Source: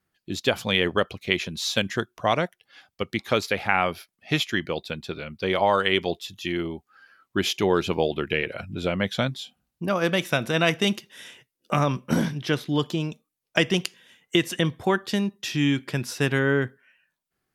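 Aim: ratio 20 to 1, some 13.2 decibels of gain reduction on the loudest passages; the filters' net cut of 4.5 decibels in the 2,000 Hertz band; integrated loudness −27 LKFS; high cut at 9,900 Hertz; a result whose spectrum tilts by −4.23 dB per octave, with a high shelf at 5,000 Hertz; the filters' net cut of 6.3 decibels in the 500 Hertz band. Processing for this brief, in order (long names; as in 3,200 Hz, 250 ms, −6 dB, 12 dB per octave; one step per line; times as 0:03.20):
low-pass filter 9,900 Hz
parametric band 500 Hz −8 dB
parametric band 2,000 Hz −6 dB
high-shelf EQ 5,000 Hz +3.5 dB
downward compressor 20 to 1, threshold −33 dBFS
level +12 dB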